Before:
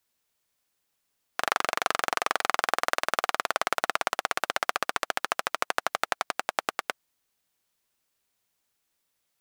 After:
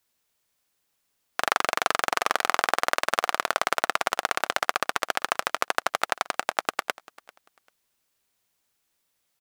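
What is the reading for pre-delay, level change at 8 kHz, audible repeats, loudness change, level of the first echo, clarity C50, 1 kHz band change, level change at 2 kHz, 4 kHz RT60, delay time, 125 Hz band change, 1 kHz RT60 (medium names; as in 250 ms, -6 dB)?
no reverb, +2.5 dB, 1, +2.5 dB, -22.0 dB, no reverb, +2.5 dB, +2.5 dB, no reverb, 393 ms, +2.5 dB, no reverb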